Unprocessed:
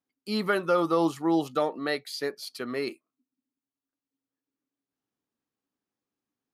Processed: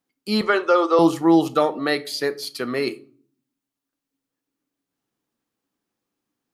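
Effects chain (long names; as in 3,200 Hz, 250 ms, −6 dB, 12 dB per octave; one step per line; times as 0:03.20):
0:00.41–0:00.99: elliptic band-pass filter 380–7,400 Hz, stop band 40 dB
on a send: convolution reverb RT60 0.45 s, pre-delay 6 ms, DRR 12.5 dB
on the sum: level +7.5 dB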